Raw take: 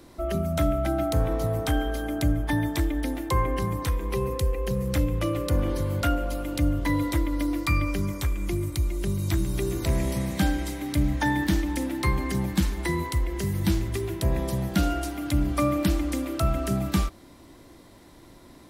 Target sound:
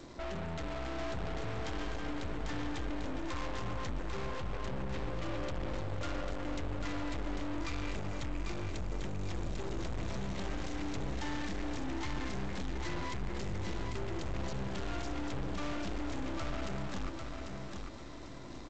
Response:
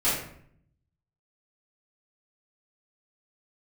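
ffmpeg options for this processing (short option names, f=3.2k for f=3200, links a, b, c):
-filter_complex "[0:a]asettb=1/sr,asplit=3[a][b][c];[a]atrim=end=4.344[d];[b]atrim=start=4.34:end=5.09,asetpts=PTS-STARTPTS,afade=t=in:d=0.004:c=qsin,afade=t=out:st=0.746:d=0.004:c=qsin,lowpass=f=3.3k:w=0.5412,lowpass=f=3.3k:w=1.3066[e];[c]atrim=start=5.086[f];[d][e]acrossfade=d=0.004:c1=hsin:c2=qsin[g];[g][f]acrossfade=d=0.004:c1=qsin:c2=hsin,aeval=exprs='(tanh(126*val(0)+0.7)-tanh(0.7))/126':c=same,aecho=1:1:795|1590|2385|3180:0.562|0.197|0.0689|0.0241,volume=3.5dB" -ar 16000 -c:a g722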